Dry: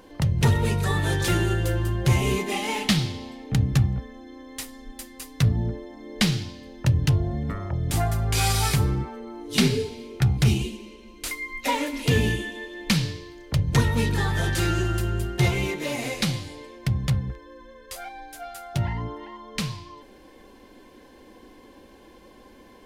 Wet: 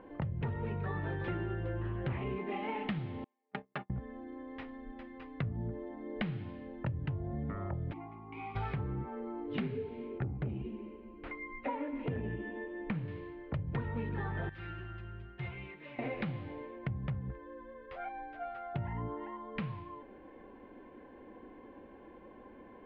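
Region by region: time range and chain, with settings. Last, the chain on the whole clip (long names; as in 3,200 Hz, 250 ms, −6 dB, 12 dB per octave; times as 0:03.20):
0:01.81–0:02.24: Butterworth low-pass 4,700 Hz + high-shelf EQ 3,200 Hz +8.5 dB + highs frequency-modulated by the lows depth 0.44 ms
0:03.24–0:03.90: high-pass filter 490 Hz + noise gate −38 dBFS, range −36 dB + comb filter 4.9 ms, depth 85%
0:07.92–0:08.55: formant filter u + high-shelf EQ 2,600 Hz +7 dB + steady tone 1,100 Hz −51 dBFS
0:10.18–0:13.08: high-shelf EQ 2,600 Hz −11.5 dB + saturating transformer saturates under 170 Hz
0:14.49–0:15.99: guitar amp tone stack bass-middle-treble 5-5-5 + notch filter 840 Hz, Q 18
whole clip: Bessel low-pass filter 1,600 Hz, order 6; low-shelf EQ 77 Hz −8 dB; downward compressor 5 to 1, threshold −32 dBFS; level −2 dB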